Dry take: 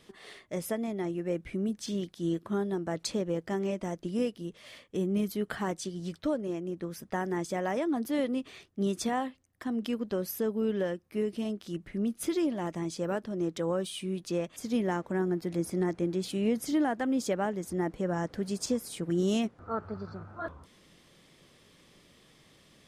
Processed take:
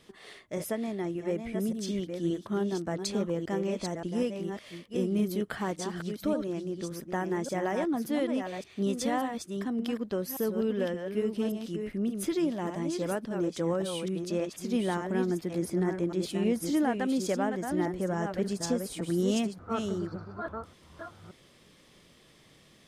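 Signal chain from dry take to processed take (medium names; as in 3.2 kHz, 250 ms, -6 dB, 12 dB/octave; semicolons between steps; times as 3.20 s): chunks repeated in reverse 576 ms, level -6 dB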